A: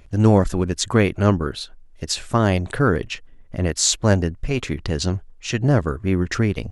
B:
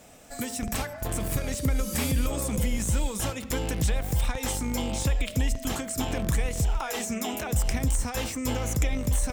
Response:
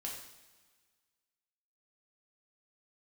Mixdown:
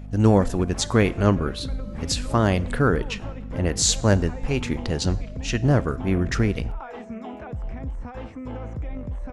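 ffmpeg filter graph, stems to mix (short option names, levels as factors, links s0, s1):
-filter_complex "[0:a]aeval=exprs='val(0)+0.0224*(sin(2*PI*50*n/s)+sin(2*PI*2*50*n/s)/2+sin(2*PI*3*50*n/s)/3+sin(2*PI*4*50*n/s)/4+sin(2*PI*5*50*n/s)/5)':c=same,volume=0.708,asplit=2[s0][s1];[s1]volume=0.2[s2];[1:a]alimiter=limit=0.0944:level=0:latency=1:release=14,lowpass=1400,volume=0.708[s3];[2:a]atrim=start_sample=2205[s4];[s2][s4]afir=irnorm=-1:irlink=0[s5];[s0][s3][s5]amix=inputs=3:normalize=0"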